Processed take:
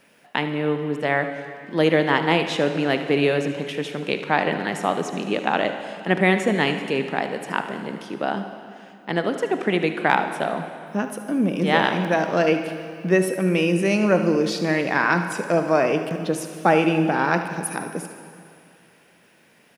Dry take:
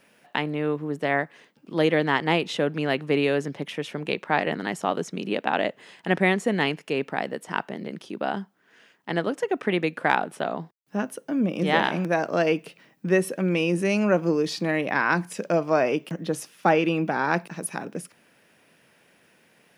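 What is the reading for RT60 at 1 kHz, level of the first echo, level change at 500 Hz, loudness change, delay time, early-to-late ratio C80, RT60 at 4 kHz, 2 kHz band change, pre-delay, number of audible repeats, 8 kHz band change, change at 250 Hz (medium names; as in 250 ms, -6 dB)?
2.5 s, -14.0 dB, +3.0 dB, +3.0 dB, 75 ms, 9.5 dB, 2.3 s, +3.0 dB, 24 ms, 1, +3.5 dB, +3.5 dB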